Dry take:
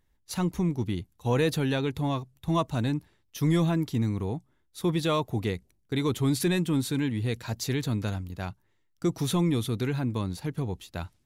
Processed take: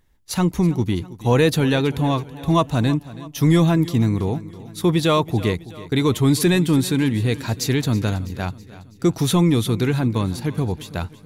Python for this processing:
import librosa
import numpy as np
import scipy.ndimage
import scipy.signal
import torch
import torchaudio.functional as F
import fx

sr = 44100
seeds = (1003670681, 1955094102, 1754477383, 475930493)

y = fx.echo_feedback(x, sr, ms=326, feedback_pct=52, wet_db=-17.5)
y = y * 10.0 ** (8.5 / 20.0)